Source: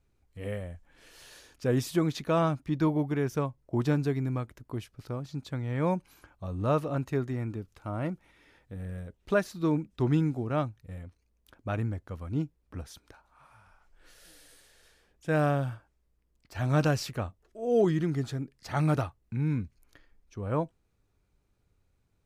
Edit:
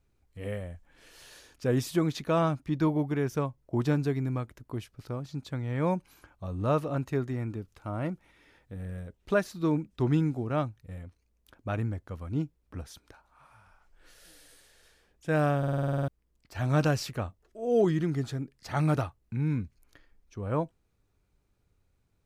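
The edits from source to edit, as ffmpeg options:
-filter_complex "[0:a]asplit=11[s0][s1][s2][s3][s4][s5][s6][s7][s8][s9][s10];[s0]atrim=end=15.632[s11];[s1]atrim=start=15.578:end=15.632[s12];[s2]atrim=start=15.578:end=15.632[s13];[s3]atrim=start=15.578:end=15.632[s14];[s4]atrim=start=15.578:end=15.632[s15];[s5]atrim=start=15.578:end=15.632[s16];[s6]atrim=start=15.578:end=15.632[s17];[s7]atrim=start=15.578:end=15.632[s18];[s8]atrim=start=15.578:end=15.632[s19];[s9]atrim=start=15.578:end=15.632[s20];[s10]atrim=start=16.078[s21];[s11][s12]acrossfade=d=0.004:c1=hsin:c2=hsin[s22];[s22][s13]acrossfade=d=0.004:c1=hsin:c2=hsin[s23];[s23][s14]acrossfade=d=0.004:c1=hsin:c2=hsin[s24];[s24][s15]acrossfade=d=0.004:c1=hsin:c2=hsin[s25];[s25][s16]acrossfade=d=0.004:c1=hsin:c2=hsin[s26];[s26][s17]acrossfade=d=0.004:c1=hsin:c2=hsin[s27];[s27][s18]acrossfade=d=0.004:c1=hsin:c2=hsin[s28];[s28][s19]acrossfade=d=0.004:c1=hsin:c2=hsin[s29];[s29][s20]acrossfade=d=0.004:c1=hsin:c2=hsin[s30];[s30][s21]acrossfade=d=0.004:c1=hsin:c2=hsin"

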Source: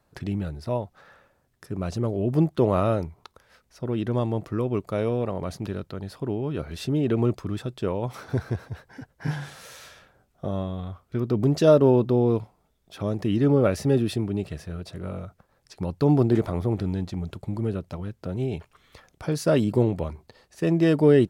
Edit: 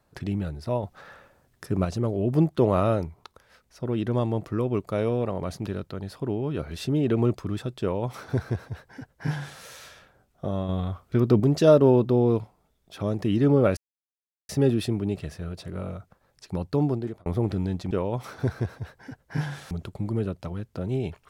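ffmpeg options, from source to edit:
-filter_complex "[0:a]asplit=9[s0][s1][s2][s3][s4][s5][s6][s7][s8];[s0]atrim=end=0.832[s9];[s1]atrim=start=0.828:end=1.852,asetpts=PTS-STARTPTS,volume=1.88[s10];[s2]atrim=start=1.848:end=10.692[s11];[s3]atrim=start=10.688:end=11.402,asetpts=PTS-STARTPTS,volume=1.78[s12];[s4]atrim=start=11.398:end=13.77,asetpts=PTS-STARTPTS,afade=t=out:st=2.368:d=0.004:c=hsin,apad=pad_dur=0.72[s13];[s5]atrim=start=13.77:end=16.54,asetpts=PTS-STARTPTS,afade=t=in:d=0.004:c=hsin,afade=t=out:st=2.06:d=0.71[s14];[s6]atrim=start=16.54:end=17.192,asetpts=PTS-STARTPTS,afade=t=in:d=0.004:c=hsin[s15];[s7]atrim=start=7.808:end=9.612[s16];[s8]atrim=start=17.188[s17];[s9][s10]acrossfade=d=0.004:c1=hsin:c2=hsin[s18];[s18][s11]acrossfade=d=0.004:c1=hsin:c2=hsin[s19];[s19][s12]acrossfade=d=0.004:c1=hsin:c2=hsin[s20];[s13][s14][s15]concat=n=3:v=0:a=1[s21];[s20][s21]acrossfade=d=0.004:c1=hsin:c2=hsin[s22];[s22][s16]acrossfade=d=0.004:c1=hsin:c2=hsin[s23];[s23][s17]acrossfade=d=0.004:c1=hsin:c2=hsin"

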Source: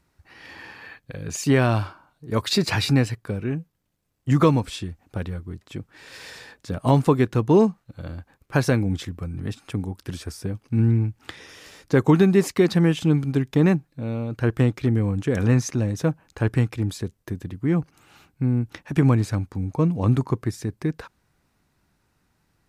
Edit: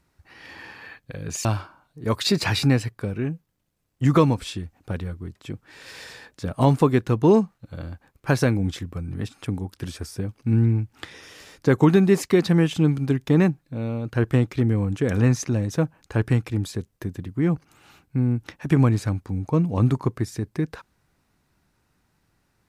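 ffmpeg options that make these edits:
-filter_complex "[0:a]asplit=2[s0][s1];[s0]atrim=end=1.452[s2];[s1]atrim=start=1.708[s3];[s2][s3]acrossfade=d=0.004:c1=hsin:c2=hsin"

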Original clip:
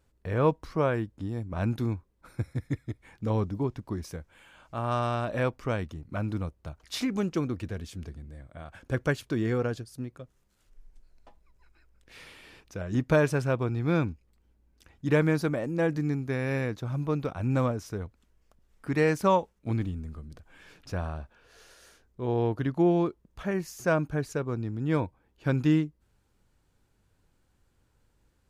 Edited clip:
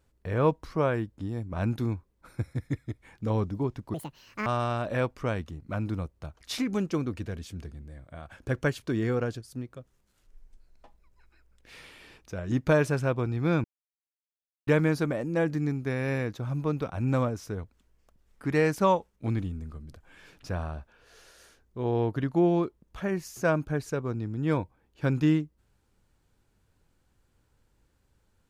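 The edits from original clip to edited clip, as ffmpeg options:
-filter_complex "[0:a]asplit=5[s0][s1][s2][s3][s4];[s0]atrim=end=3.944[s5];[s1]atrim=start=3.94:end=4.89,asetpts=PTS-STARTPTS,asetrate=80262,aresample=44100,atrim=end_sample=23019,asetpts=PTS-STARTPTS[s6];[s2]atrim=start=4.886:end=14.07,asetpts=PTS-STARTPTS,afade=t=out:st=9.18:d=0.004:c=hsin[s7];[s3]atrim=start=14.07:end=15.1,asetpts=PTS-STARTPTS,volume=0[s8];[s4]atrim=start=15.1,asetpts=PTS-STARTPTS,afade=t=in:d=0.004:c=hsin[s9];[s5][s6]acrossfade=d=0.004:c1=hsin:c2=hsin[s10];[s7][s8][s9]concat=n=3:v=0:a=1[s11];[s10][s11]acrossfade=d=0.004:c1=hsin:c2=hsin"

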